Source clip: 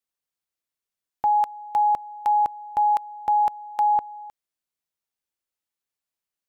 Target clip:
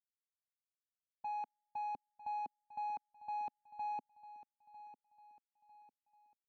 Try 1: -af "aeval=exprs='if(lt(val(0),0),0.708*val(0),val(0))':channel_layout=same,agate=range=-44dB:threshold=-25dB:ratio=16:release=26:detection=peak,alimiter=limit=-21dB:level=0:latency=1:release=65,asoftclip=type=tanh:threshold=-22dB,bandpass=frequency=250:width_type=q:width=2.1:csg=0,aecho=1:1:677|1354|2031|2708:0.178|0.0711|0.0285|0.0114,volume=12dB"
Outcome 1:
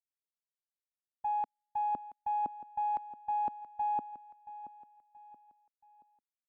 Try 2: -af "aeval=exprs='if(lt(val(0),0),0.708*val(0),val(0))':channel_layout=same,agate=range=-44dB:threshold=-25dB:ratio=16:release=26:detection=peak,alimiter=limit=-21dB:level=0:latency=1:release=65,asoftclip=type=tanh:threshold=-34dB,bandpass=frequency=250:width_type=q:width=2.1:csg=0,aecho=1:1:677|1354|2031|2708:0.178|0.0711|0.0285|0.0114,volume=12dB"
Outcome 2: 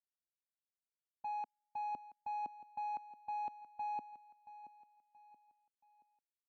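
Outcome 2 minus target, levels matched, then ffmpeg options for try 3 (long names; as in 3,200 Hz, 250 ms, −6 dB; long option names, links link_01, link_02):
echo 273 ms early
-af "aeval=exprs='if(lt(val(0),0),0.708*val(0),val(0))':channel_layout=same,agate=range=-44dB:threshold=-25dB:ratio=16:release=26:detection=peak,alimiter=limit=-21dB:level=0:latency=1:release=65,asoftclip=type=tanh:threshold=-34dB,bandpass=frequency=250:width_type=q:width=2.1:csg=0,aecho=1:1:950|1900|2850|3800:0.178|0.0711|0.0285|0.0114,volume=12dB"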